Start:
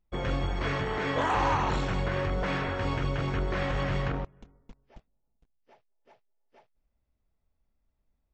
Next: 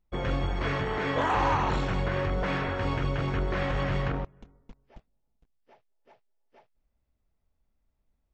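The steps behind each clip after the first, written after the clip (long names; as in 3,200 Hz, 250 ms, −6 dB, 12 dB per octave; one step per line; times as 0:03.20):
high-shelf EQ 7,100 Hz −7.5 dB
level +1 dB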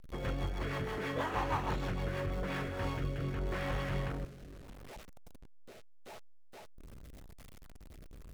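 converter with a step at zero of −36 dBFS
rotating-speaker cabinet horn 6.3 Hz, later 0.8 Hz, at 0:02.18
level −7 dB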